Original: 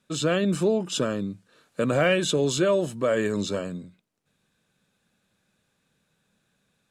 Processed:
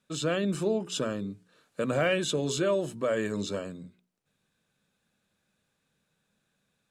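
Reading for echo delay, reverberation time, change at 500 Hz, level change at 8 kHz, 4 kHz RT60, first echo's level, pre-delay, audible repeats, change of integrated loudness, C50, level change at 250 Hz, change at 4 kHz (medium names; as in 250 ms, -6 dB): no echo, no reverb, -5.0 dB, -4.5 dB, no reverb, no echo, no reverb, no echo, -5.0 dB, no reverb, -5.0 dB, -4.5 dB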